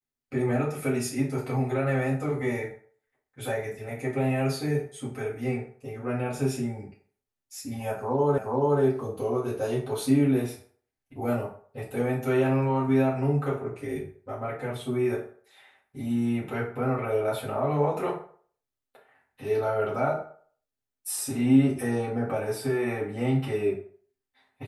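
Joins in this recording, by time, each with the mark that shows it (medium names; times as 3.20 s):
8.38 s: repeat of the last 0.43 s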